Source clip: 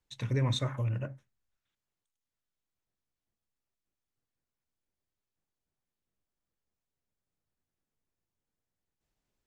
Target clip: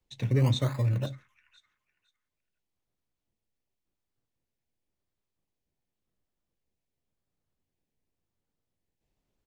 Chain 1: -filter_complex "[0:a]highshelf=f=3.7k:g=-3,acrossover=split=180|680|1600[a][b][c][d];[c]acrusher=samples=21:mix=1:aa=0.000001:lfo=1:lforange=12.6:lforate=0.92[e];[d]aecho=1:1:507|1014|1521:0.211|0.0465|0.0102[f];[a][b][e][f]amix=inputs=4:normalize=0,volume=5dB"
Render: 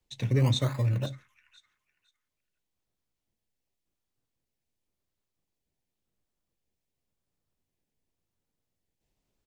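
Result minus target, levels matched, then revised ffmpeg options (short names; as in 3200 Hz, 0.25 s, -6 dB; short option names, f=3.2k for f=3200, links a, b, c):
8000 Hz band +3.5 dB
-filter_complex "[0:a]highshelf=f=3.7k:g=-9,acrossover=split=180|680|1600[a][b][c][d];[c]acrusher=samples=21:mix=1:aa=0.000001:lfo=1:lforange=12.6:lforate=0.92[e];[d]aecho=1:1:507|1014|1521:0.211|0.0465|0.0102[f];[a][b][e][f]amix=inputs=4:normalize=0,volume=5dB"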